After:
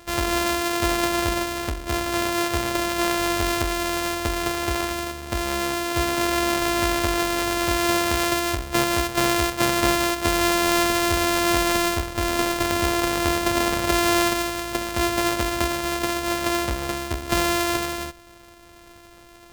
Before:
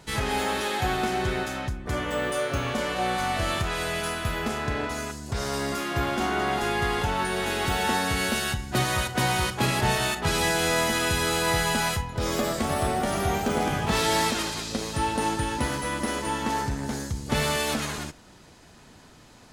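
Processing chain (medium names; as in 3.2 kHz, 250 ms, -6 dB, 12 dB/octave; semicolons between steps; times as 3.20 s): sorted samples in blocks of 128 samples; peaking EQ 160 Hz -10 dB 1.2 oct; trim +5 dB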